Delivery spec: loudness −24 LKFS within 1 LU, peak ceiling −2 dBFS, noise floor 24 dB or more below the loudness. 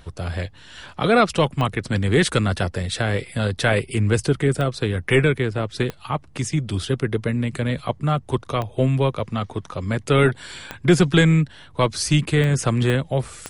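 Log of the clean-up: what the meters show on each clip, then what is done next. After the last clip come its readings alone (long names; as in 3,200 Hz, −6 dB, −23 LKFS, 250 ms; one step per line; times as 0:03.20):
number of clicks 8; integrated loudness −21.5 LKFS; sample peak −4.0 dBFS; target loudness −24.0 LKFS
→ click removal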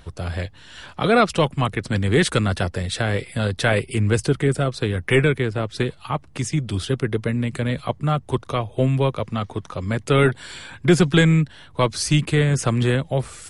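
number of clicks 0; integrated loudness −21.5 LKFS; sample peak −4.0 dBFS; target loudness −24.0 LKFS
→ level −2.5 dB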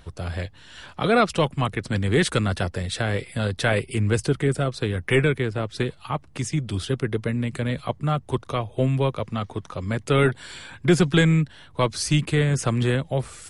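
integrated loudness −24.0 LKFS; sample peak −6.5 dBFS; background noise floor −50 dBFS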